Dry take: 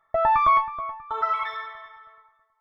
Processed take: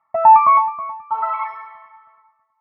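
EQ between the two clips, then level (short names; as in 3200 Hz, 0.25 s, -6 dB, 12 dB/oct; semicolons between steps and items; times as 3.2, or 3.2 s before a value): dynamic EQ 710 Hz, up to +7 dB, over -34 dBFS, Q 0.87; speaker cabinet 130–3600 Hz, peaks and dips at 230 Hz +6 dB, 490 Hz +6 dB, 910 Hz +7 dB; fixed phaser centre 2400 Hz, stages 8; 0.0 dB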